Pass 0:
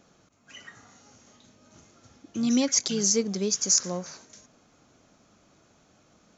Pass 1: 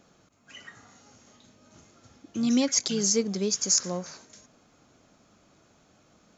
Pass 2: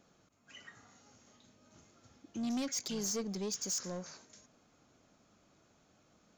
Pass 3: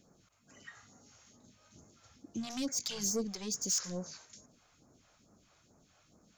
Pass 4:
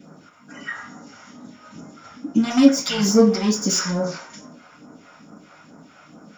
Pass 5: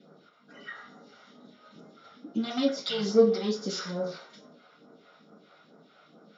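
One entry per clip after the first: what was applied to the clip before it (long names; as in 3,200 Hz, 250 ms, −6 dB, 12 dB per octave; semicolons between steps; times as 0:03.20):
notch filter 5,900 Hz, Q 17
soft clipping −25 dBFS, distortion −10 dB; level −7 dB
all-pass phaser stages 2, 2.3 Hz, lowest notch 210–3,100 Hz; level +3.5 dB
convolution reverb RT60 0.45 s, pre-delay 3 ms, DRR −10 dB; level +6 dB
loudspeaker in its box 210–4,500 Hz, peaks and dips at 280 Hz −8 dB, 430 Hz +6 dB, 970 Hz −8 dB, 1,700 Hz −5 dB, 2,500 Hz −7 dB, 3,900 Hz +10 dB; level −7 dB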